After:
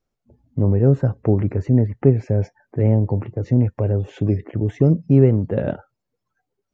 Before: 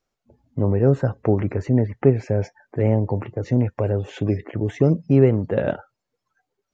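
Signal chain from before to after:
low-shelf EQ 420 Hz +10 dB
level −5.5 dB

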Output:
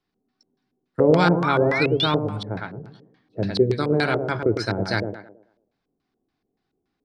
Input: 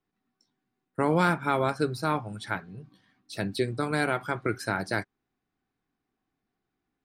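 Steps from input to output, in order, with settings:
sound drawn into the spectrogram rise, 0:00.99–0:02.06, 480–3,800 Hz −30 dBFS
tape delay 107 ms, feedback 43%, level −4 dB, low-pass 1,700 Hz
auto-filter low-pass square 3.5 Hz 480–4,700 Hz
dynamic equaliser 100 Hz, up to +6 dB, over −44 dBFS, Q 1.2
level +3 dB

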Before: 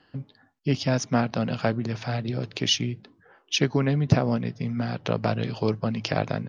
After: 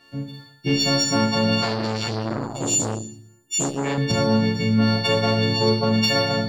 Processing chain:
every partial snapped to a pitch grid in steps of 4 semitones
0:02.07–0:03.84: gain on a spectral selection 390–6,300 Hz −22 dB
downward compressor 4 to 1, threshold −27 dBFS, peak gain reduction 10.5 dB
leveller curve on the samples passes 1
automatic gain control gain up to 3.5 dB
0:02.30–0:02.77: sound drawn into the spectrogram fall 280–1,500 Hz −35 dBFS
four-comb reverb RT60 0.71 s, combs from 25 ms, DRR 0.5 dB
0:01.62–0:03.98: saturating transformer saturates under 1,000 Hz

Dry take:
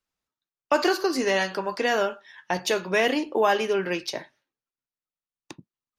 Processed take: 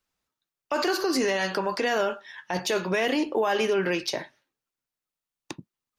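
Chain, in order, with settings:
brickwall limiter −21 dBFS, peak gain reduction 11.5 dB
level +4.5 dB

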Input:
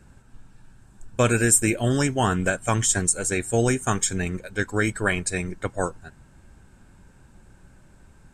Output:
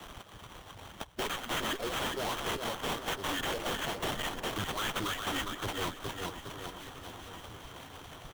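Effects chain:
harmonic-percussive split with one part muted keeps percussive
low-pass with resonance 7,700 Hz, resonance Q 14
parametric band 200 Hz −5 dB 0.77 octaves
reversed playback
downward compressor 6 to 1, threshold −24 dBFS, peak gain reduction 24.5 dB
reversed playback
formants moved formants −5 semitones
repeating echo 408 ms, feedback 38%, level −11 dB
tube saturation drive 34 dB, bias 0.5
sample-rate reduction 4,900 Hz, jitter 20%
parametric band 3,200 Hz +9.5 dB 0.21 octaves
on a send: delay that swaps between a low-pass and a high-pass 497 ms, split 1,700 Hz, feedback 67%, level −14 dB
on the sum: multiband upward and downward compressor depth 40%
level +2.5 dB

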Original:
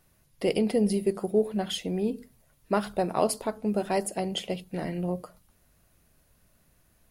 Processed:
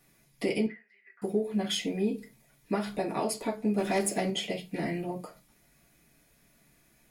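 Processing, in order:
0:03.78–0:04.30: leveller curve on the samples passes 2
downward compressor 4 to 1, threshold −28 dBFS, peak gain reduction 9 dB
0:00.66–0:01.22: flat-topped band-pass 1,700 Hz, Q 3.3
convolution reverb RT60 0.20 s, pre-delay 3 ms, DRR −4.5 dB

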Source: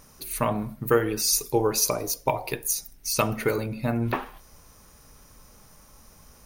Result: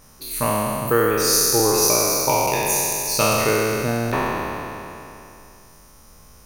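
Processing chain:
peak hold with a decay on every bin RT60 2.88 s

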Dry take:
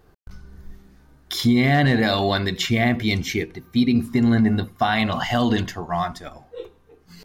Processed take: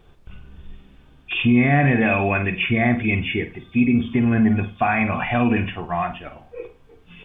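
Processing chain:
hearing-aid frequency compression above 2,200 Hz 4 to 1
flutter between parallel walls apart 8.5 metres, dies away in 0.27 s
background noise brown −53 dBFS

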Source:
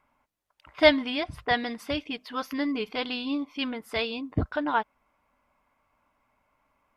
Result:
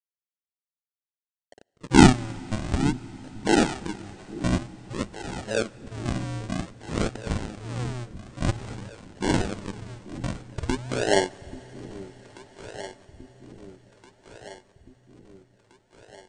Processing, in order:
adaptive Wiener filter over 15 samples
meter weighting curve ITU-R 468
low-pass that shuts in the quiet parts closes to 1,400 Hz, open at −26 dBFS
high-shelf EQ 2,900 Hz −7 dB
mains-hum notches 60/120/180/240 Hz
in parallel at +0.5 dB: downward compressor, threshold −37 dBFS, peak gain reduction 22.5 dB
on the sum: sample-and-hold swept by an LFO 30×, swing 100% 1.2 Hz
dead-zone distortion −51.5 dBFS
on a send: delay that swaps between a low-pass and a high-pass 357 ms, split 850 Hz, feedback 73%, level −13 dB
on the sum: four-comb reverb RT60 4 s, combs from 28 ms, DRR 20 dB
wrong playback speed 78 rpm record played at 33 rpm
level +2.5 dB

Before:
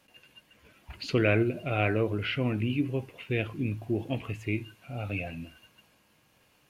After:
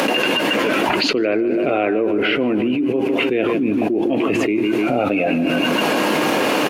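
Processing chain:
high-pass filter 280 Hz 24 dB per octave
spectral tilt −3.5 dB per octave
upward compression, threshold −41 dBFS
shaped tremolo saw up 2.7 Hz, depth 35%
repeating echo 151 ms, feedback 51%, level −14.5 dB
envelope flattener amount 100%
level +1.5 dB

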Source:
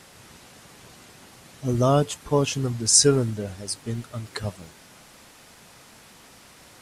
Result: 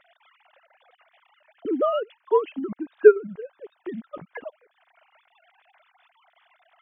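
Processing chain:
three sine waves on the formant tracks
0:01.70–0:03.72: Bessel low-pass filter 2,800 Hz
transient designer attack +6 dB, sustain −7 dB
level −3.5 dB

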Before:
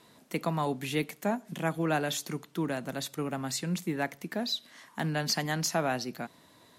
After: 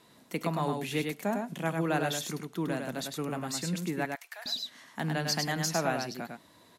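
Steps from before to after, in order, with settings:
0:04.05–0:04.46: Bessel high-pass filter 1,200 Hz, order 8
on a send: single-tap delay 102 ms −4.5 dB
on the sum: level −1.5 dB

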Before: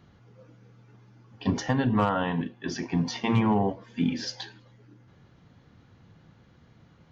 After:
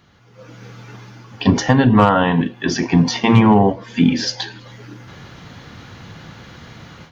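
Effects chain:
automatic gain control gain up to 16 dB
one half of a high-frequency compander encoder only

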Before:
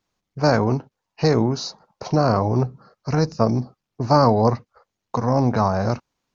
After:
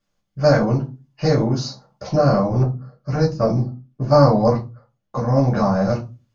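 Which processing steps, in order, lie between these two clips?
convolution reverb RT60 0.30 s, pre-delay 3 ms, DRR −3.5 dB
0:02.63–0:05.39: one half of a high-frequency compander decoder only
level −6.5 dB

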